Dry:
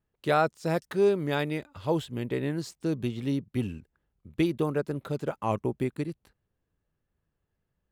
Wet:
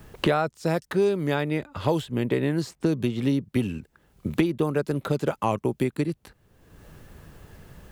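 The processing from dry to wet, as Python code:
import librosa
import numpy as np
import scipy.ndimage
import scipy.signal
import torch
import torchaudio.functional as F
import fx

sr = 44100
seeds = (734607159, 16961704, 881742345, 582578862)

y = fx.band_squash(x, sr, depth_pct=100)
y = F.gain(torch.from_numpy(y), 3.5).numpy()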